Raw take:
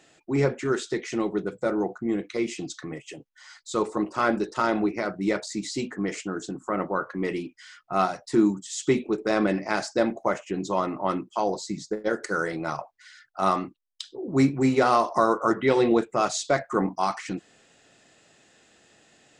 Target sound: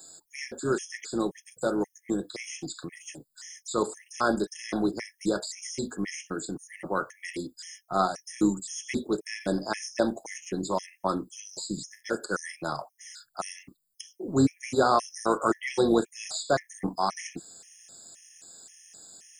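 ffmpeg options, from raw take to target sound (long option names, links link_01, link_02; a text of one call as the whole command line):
ffmpeg -i in.wav -filter_complex "[0:a]tremolo=f=170:d=0.333,acrossover=split=270|950|4800[link_01][link_02][link_03][link_04];[link_04]acontrast=84[link_05];[link_01][link_02][link_03][link_05]amix=inputs=4:normalize=0,aexciter=amount=5:drive=3.8:freq=4300,acrossover=split=3200[link_06][link_07];[link_07]acompressor=threshold=-36dB:ratio=4:attack=1:release=60[link_08];[link_06][link_08]amix=inputs=2:normalize=0,afftfilt=real='re*gt(sin(2*PI*1.9*pts/sr)*(1-2*mod(floor(b*sr/1024/1700),2)),0)':imag='im*gt(sin(2*PI*1.9*pts/sr)*(1-2*mod(floor(b*sr/1024/1700),2)),0)':win_size=1024:overlap=0.75" out.wav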